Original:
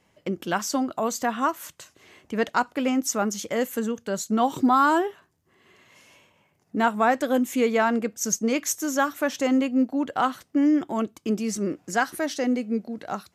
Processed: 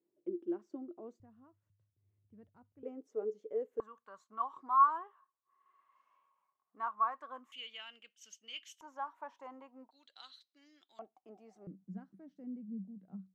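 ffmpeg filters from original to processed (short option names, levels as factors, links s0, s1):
-af "asetnsamples=n=441:p=0,asendcmd='1.2 bandpass f 100;2.83 bandpass f 430;3.8 bandpass f 1100;7.52 bandpass f 3000;8.81 bandpass f 950;9.91 bandpass f 4000;10.99 bandpass f 760;11.67 bandpass f 190',bandpass=f=350:t=q:w=17:csg=0"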